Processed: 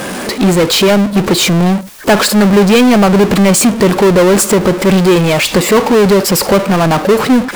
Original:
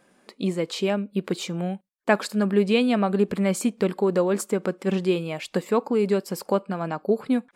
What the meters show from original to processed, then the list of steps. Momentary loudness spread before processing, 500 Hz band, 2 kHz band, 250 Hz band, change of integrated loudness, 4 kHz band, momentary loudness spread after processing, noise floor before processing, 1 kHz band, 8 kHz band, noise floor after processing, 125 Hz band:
8 LU, +13.5 dB, +16.5 dB, +15.0 dB, +15.0 dB, +20.0 dB, 4 LU, -62 dBFS, +16.0 dB, +22.0 dB, -22 dBFS, +17.0 dB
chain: power-law waveshaper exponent 0.35; trim +6 dB

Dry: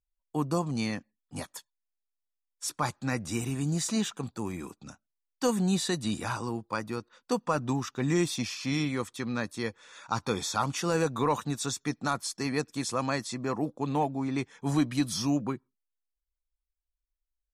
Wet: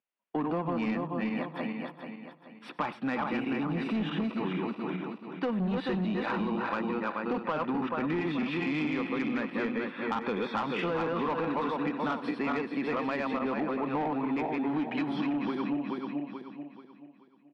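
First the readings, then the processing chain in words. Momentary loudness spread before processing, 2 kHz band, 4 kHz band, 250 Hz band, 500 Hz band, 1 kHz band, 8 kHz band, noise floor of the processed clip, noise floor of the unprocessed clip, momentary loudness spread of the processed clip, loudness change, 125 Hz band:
10 LU, +2.0 dB, -7.0 dB, +1.0 dB, +0.5 dB, +0.5 dB, under -25 dB, -56 dBFS, -85 dBFS, 7 LU, -0.5 dB, -6.0 dB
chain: backward echo that repeats 216 ms, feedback 60%, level -3 dB; in parallel at +2 dB: peak limiter -18.5 dBFS, peak gain reduction 7 dB; on the sum: elliptic band-pass 190–2800 Hz, stop band 40 dB; saturation -18 dBFS, distortion -15 dB; compression, threshold -28 dBFS, peak gain reduction 7.5 dB; delay 95 ms -19.5 dB

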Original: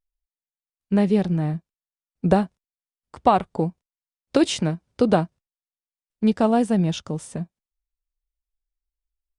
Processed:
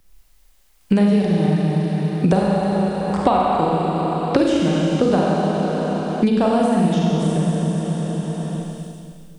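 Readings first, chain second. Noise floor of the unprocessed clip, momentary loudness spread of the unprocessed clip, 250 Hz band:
under -85 dBFS, 12 LU, +5.5 dB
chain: Schroeder reverb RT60 2.2 s, combs from 31 ms, DRR -4.5 dB; three bands compressed up and down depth 100%; trim -1.5 dB

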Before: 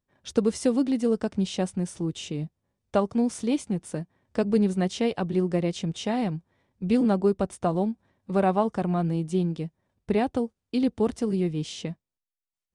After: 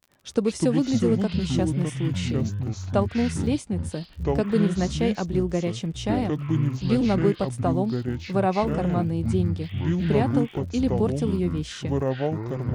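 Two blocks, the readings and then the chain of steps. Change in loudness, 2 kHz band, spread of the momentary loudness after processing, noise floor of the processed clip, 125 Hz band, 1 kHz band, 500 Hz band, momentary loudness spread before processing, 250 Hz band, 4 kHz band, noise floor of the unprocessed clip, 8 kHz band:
+2.0 dB, +3.5 dB, 6 LU, -43 dBFS, +7.0 dB, +0.5 dB, +1.0 dB, 11 LU, +2.0 dB, +2.5 dB, under -85 dBFS, +1.0 dB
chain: ever faster or slower copies 94 ms, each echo -6 st, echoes 3; crackle 55 per s -41 dBFS

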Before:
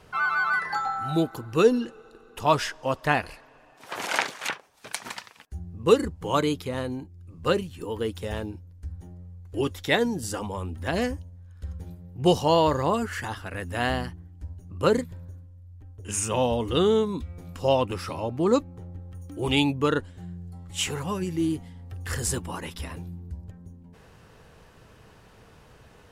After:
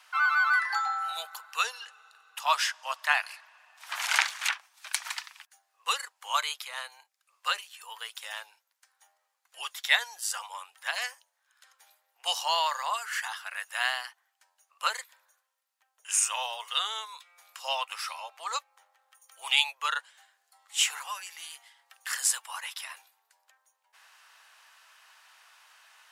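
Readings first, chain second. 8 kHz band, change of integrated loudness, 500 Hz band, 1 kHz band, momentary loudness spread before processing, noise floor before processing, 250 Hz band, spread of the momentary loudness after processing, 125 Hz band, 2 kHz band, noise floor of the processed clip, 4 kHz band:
+3.5 dB, -3.5 dB, -21.0 dB, -3.0 dB, 19 LU, -54 dBFS, under -40 dB, 17 LU, under -40 dB, +1.5 dB, -78 dBFS, +3.0 dB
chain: Bessel high-pass 1.4 kHz, order 8; trim +3.5 dB

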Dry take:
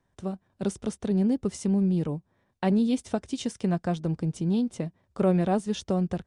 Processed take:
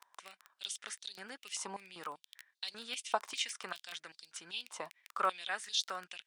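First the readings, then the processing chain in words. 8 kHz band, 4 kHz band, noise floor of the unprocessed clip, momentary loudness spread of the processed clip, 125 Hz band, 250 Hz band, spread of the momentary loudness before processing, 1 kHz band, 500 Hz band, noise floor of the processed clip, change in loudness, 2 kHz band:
+0.5 dB, +5.0 dB, -74 dBFS, 14 LU, -37.5 dB, -33.5 dB, 10 LU, -3.5 dB, -16.5 dB, under -85 dBFS, -12.0 dB, +2.0 dB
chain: crackle 12 per s -34 dBFS; step-sequenced high-pass 5.1 Hz 1–4 kHz; trim -1 dB

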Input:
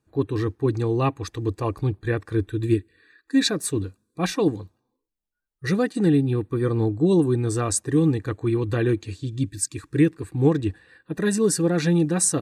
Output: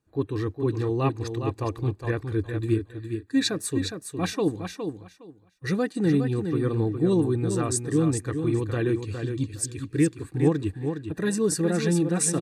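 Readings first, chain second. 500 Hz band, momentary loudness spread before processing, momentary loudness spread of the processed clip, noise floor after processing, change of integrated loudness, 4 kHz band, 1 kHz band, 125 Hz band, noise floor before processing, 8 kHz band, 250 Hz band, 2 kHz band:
-2.5 dB, 8 LU, 8 LU, -55 dBFS, -3.0 dB, -2.5 dB, -3.0 dB, -2.5 dB, -81 dBFS, -3.0 dB, -2.5 dB, -2.5 dB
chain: feedback delay 412 ms, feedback 18%, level -7 dB; trim -3.5 dB

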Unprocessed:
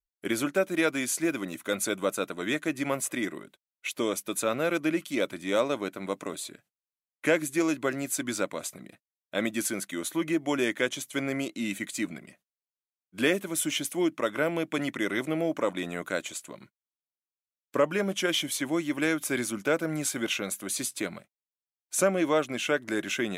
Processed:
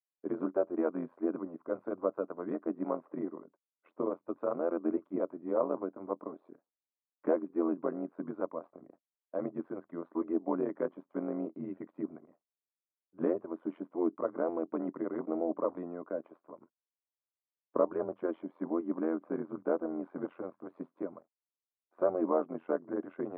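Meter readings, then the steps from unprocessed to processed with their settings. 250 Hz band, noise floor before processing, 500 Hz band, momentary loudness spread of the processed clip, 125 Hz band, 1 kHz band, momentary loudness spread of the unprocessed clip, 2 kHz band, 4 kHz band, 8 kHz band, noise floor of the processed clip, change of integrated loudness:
-5.0 dB, under -85 dBFS, -4.0 dB, 10 LU, -12.0 dB, -6.0 dB, 8 LU, -22.5 dB, under -40 dB, under -40 dB, under -85 dBFS, -6.0 dB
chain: elliptic band-pass 260–1100 Hz, stop band 70 dB; AM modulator 86 Hz, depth 70%

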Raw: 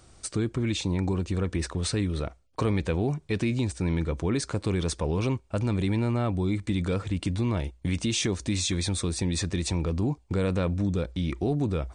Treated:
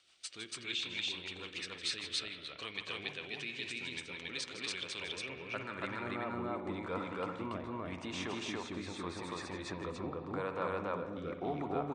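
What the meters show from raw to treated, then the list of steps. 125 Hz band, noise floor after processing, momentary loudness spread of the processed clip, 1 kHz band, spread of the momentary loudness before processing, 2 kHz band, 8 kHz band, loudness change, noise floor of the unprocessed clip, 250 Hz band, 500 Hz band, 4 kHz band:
-22.0 dB, -51 dBFS, 5 LU, -3.0 dB, 3 LU, -2.5 dB, -14.0 dB, -11.5 dB, -58 dBFS, -15.0 dB, -10.0 dB, -4.0 dB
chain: spring tank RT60 2.1 s, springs 55 ms, chirp 35 ms, DRR 8 dB; band-pass sweep 3.1 kHz -> 1 kHz, 4.72–6.34 s; rotary cabinet horn 6.7 Hz, later 0.85 Hz, at 3.92 s; on a send: loudspeakers at several distances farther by 54 m -11 dB, 97 m 0 dB; on the sum: trim +4 dB

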